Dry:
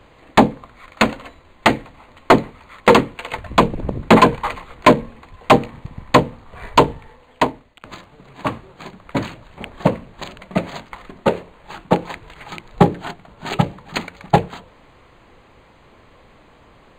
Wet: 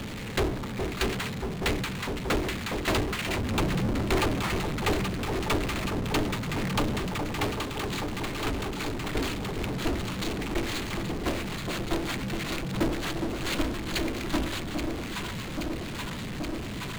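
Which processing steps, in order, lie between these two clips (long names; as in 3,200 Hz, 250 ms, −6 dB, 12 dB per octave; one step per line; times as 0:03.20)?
guitar amp tone stack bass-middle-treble 6-0-2
ring modulation 160 Hz
delay that swaps between a low-pass and a high-pass 413 ms, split 940 Hz, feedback 82%, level −14 dB
power curve on the samples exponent 0.35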